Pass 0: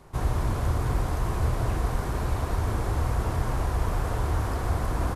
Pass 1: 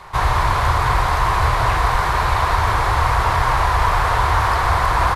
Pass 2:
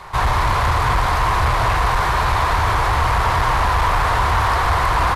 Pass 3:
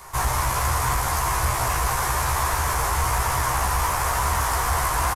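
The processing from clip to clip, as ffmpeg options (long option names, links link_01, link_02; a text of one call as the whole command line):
ffmpeg -i in.wav -af "equalizer=frequency=250:width_type=o:width=1:gain=-11,equalizer=frequency=1000:width_type=o:width=1:gain=12,equalizer=frequency=2000:width_type=o:width=1:gain=9,equalizer=frequency=4000:width_type=o:width=1:gain=9,volume=6.5dB" out.wav
ffmpeg -i in.wav -af "asoftclip=type=tanh:threshold=-13.5dB,volume=2.5dB" out.wav
ffmpeg -i in.wav -filter_complex "[0:a]aexciter=amount=7.3:drive=3.4:freq=5600,asplit=2[link_01][link_02];[link_02]adelay=15,volume=-3dB[link_03];[link_01][link_03]amix=inputs=2:normalize=0,volume=-8dB" out.wav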